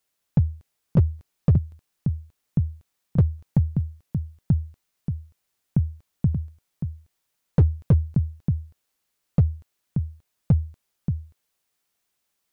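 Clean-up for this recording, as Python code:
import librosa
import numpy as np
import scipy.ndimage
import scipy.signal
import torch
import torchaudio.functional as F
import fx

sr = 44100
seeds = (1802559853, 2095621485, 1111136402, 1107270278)

y = fx.fix_declip(x, sr, threshold_db=-11.0)
y = fx.fix_echo_inverse(y, sr, delay_ms=581, level_db=-7.5)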